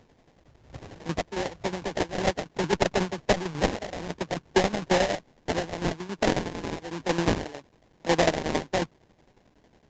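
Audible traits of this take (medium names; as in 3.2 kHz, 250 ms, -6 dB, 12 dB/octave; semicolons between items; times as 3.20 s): a quantiser's noise floor 10-bit, dither triangular; tremolo saw down 11 Hz, depth 70%; aliases and images of a low sample rate 1.3 kHz, jitter 20%; Vorbis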